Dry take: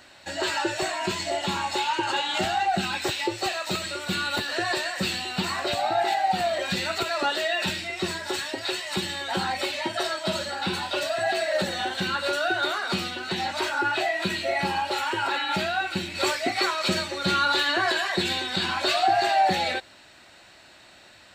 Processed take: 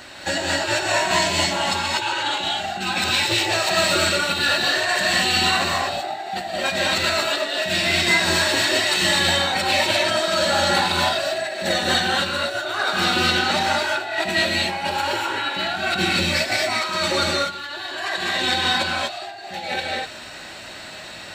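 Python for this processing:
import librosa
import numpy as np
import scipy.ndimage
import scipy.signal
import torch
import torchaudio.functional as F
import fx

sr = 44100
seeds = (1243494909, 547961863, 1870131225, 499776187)

y = fx.over_compress(x, sr, threshold_db=-31.0, ratio=-0.5)
y = fx.rev_gated(y, sr, seeds[0], gate_ms=270, shape='rising', drr_db=-2.0)
y = y * librosa.db_to_amplitude(5.5)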